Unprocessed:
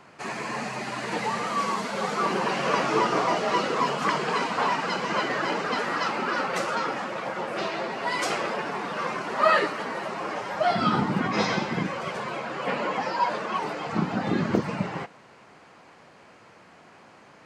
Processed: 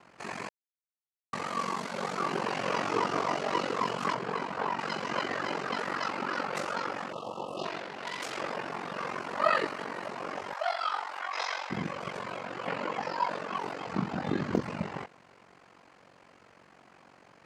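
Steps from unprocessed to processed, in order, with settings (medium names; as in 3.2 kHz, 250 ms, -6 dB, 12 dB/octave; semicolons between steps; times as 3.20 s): 4.14–4.79 s: treble shelf 2.2 kHz -9 dB; 7.12–7.64 s: spectral selection erased 1.3–2.6 kHz; 10.53–11.70 s: high-pass 670 Hz 24 dB/octave; ring modulator 23 Hz; 0.49–1.33 s: mute; 7.78–8.37 s: transformer saturation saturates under 3.5 kHz; trim -3 dB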